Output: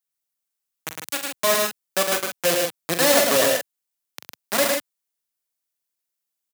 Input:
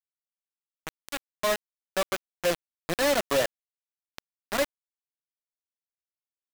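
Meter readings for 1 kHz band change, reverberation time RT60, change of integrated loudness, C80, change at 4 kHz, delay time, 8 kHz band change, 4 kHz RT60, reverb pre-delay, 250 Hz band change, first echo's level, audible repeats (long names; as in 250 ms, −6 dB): +6.5 dB, no reverb audible, +8.5 dB, no reverb audible, +9.5 dB, 41 ms, +13.0 dB, no reverb audible, no reverb audible, +6.0 dB, −8.0 dB, 3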